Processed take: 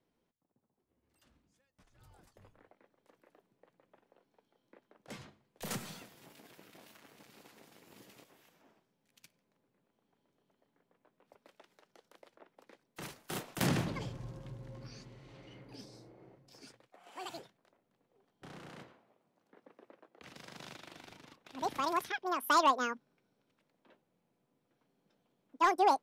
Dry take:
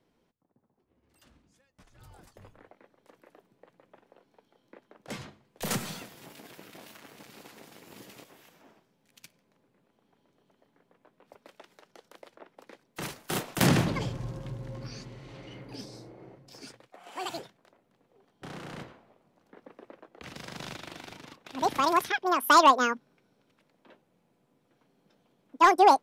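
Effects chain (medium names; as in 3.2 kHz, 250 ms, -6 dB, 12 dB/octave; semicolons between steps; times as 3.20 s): 18.69–20.96 s: high-pass 140 Hz 6 dB/octave; trim -8.5 dB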